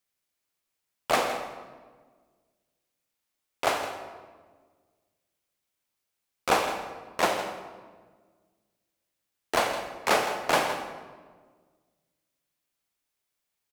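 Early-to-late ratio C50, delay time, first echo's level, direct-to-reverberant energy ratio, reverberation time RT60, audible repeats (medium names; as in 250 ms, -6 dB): 6.5 dB, 163 ms, -12.5 dB, 5.5 dB, 1.5 s, 1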